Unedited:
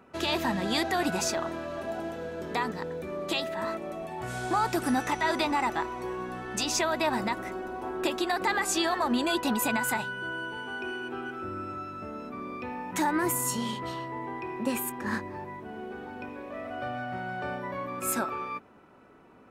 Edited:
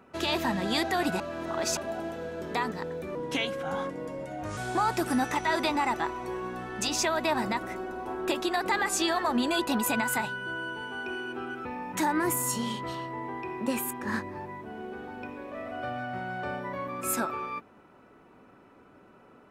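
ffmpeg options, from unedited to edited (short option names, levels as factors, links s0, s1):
-filter_complex "[0:a]asplit=6[s0][s1][s2][s3][s4][s5];[s0]atrim=end=1.202[s6];[s1]atrim=start=1.198:end=1.772,asetpts=PTS-STARTPTS,areverse[s7];[s2]atrim=start=1.768:end=3.154[s8];[s3]atrim=start=3.15:end=4.33,asetpts=PTS-STARTPTS,asetrate=36603,aresample=44100,atrim=end_sample=62696,asetpts=PTS-STARTPTS[s9];[s4]atrim=start=4.326:end=11.412[s10];[s5]atrim=start=12.638[s11];[s6][s7]acrossfade=d=0.004:c1=hsin:c2=hsin[s12];[s12][s8]acrossfade=d=0.004:c1=hsin:c2=hsin[s13];[s13][s9]acrossfade=d=0.004:c1=hsin:c2=hsin[s14];[s14][s10]acrossfade=d=0.004:c1=hsin:c2=hsin[s15];[s15][s11]acrossfade=d=0.004:c1=hsin:c2=hsin"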